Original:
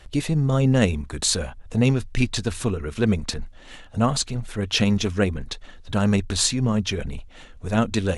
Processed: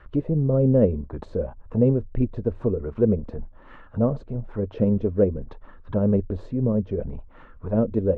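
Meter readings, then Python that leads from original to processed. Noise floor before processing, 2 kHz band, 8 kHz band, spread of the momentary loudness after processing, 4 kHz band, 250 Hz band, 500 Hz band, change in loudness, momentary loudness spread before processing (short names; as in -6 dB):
-45 dBFS, under -15 dB, under -40 dB, 12 LU, under -30 dB, -0.5 dB, +4.0 dB, -1.0 dB, 14 LU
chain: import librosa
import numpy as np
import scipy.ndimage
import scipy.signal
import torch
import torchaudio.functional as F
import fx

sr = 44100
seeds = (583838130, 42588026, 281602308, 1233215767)

y = fx.peak_eq(x, sr, hz=740.0, db=-9.0, octaves=0.33)
y = fx.envelope_lowpass(y, sr, base_hz=540.0, top_hz=1400.0, q=2.6, full_db=-20.5, direction='down')
y = F.gain(torch.from_numpy(y), -2.0).numpy()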